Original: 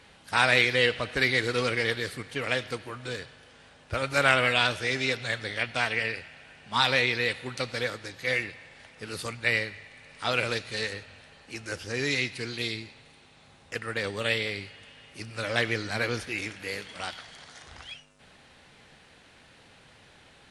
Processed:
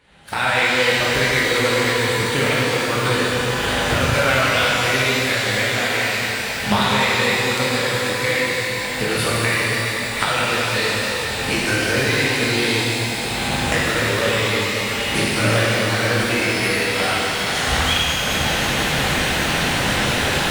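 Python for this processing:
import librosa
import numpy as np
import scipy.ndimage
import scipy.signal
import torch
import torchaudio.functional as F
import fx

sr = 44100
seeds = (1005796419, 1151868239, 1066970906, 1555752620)

p1 = fx.recorder_agc(x, sr, target_db=-12.0, rise_db_per_s=35.0, max_gain_db=30)
p2 = fx.peak_eq(p1, sr, hz=5600.0, db=-7.0, octaves=0.64)
p3 = fx.quant_dither(p2, sr, seeds[0], bits=6, dither='none')
p4 = p2 + (p3 * 10.0 ** (-8.0 / 20.0))
p5 = fx.rev_shimmer(p4, sr, seeds[1], rt60_s=3.6, semitones=12, shimmer_db=-8, drr_db=-7.0)
y = p5 * 10.0 ** (-5.0 / 20.0)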